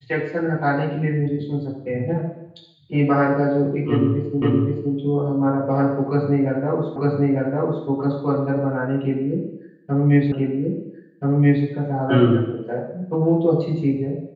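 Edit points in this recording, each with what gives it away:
0:04.42: the same again, the last 0.52 s
0:06.96: the same again, the last 0.9 s
0:10.32: the same again, the last 1.33 s

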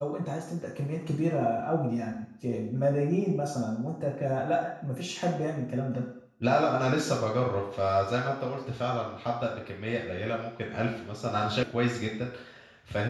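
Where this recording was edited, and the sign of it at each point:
0:11.63: cut off before it has died away

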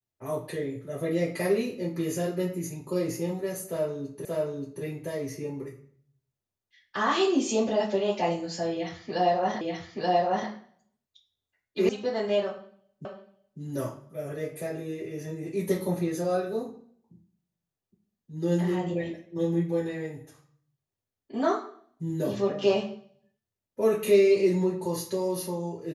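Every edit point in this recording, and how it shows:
0:04.25: the same again, the last 0.58 s
0:09.61: the same again, the last 0.88 s
0:11.89: cut off before it has died away
0:13.05: the same again, the last 0.55 s

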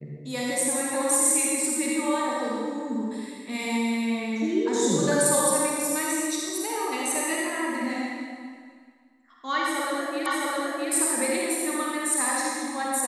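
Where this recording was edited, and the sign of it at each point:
0:10.26: the same again, the last 0.66 s

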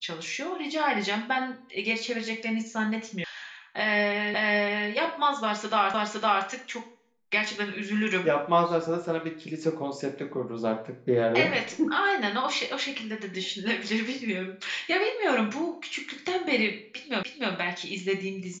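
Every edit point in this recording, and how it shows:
0:03.24: cut off before it has died away
0:04.34: the same again, the last 0.56 s
0:05.94: the same again, the last 0.51 s
0:17.23: the same again, the last 0.3 s

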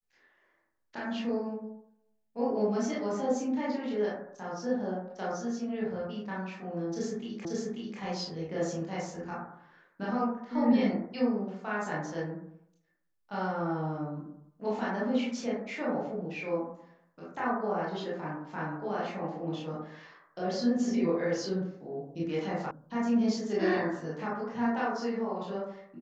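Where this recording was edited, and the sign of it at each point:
0:07.45: the same again, the last 0.54 s
0:22.71: cut off before it has died away

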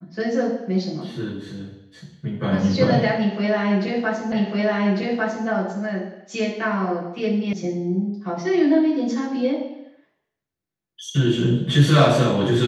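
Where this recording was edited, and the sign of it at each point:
0:04.32: the same again, the last 1.15 s
0:07.53: cut off before it has died away

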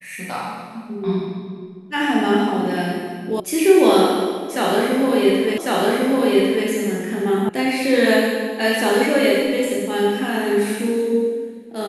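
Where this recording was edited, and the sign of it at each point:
0:03.40: cut off before it has died away
0:05.58: the same again, the last 1.1 s
0:07.49: cut off before it has died away

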